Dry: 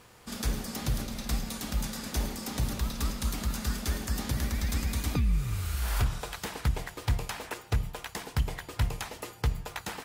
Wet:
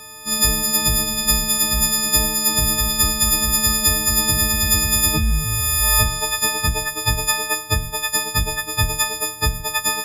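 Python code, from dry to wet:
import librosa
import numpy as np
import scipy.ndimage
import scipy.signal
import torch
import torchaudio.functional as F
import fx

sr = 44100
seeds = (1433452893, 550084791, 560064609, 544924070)

y = fx.freq_snap(x, sr, grid_st=6)
y = F.gain(torch.from_numpy(y), 8.0).numpy()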